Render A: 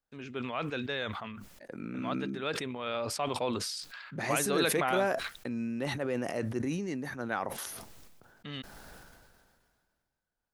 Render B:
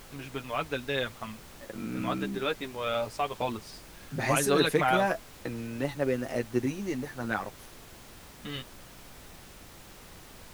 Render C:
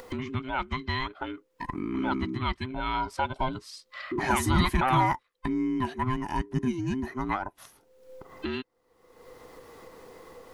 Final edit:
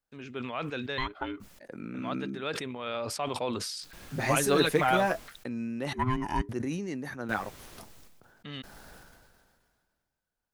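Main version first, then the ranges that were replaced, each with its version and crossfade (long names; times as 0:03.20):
A
0:00.98–0:01.40: punch in from C
0:03.93–0:05.28: punch in from B
0:05.93–0:06.49: punch in from C
0:07.29–0:07.78: punch in from B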